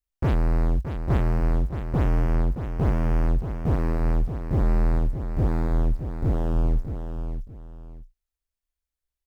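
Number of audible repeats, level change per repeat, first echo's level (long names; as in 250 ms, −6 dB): 2, −11.5 dB, −8.5 dB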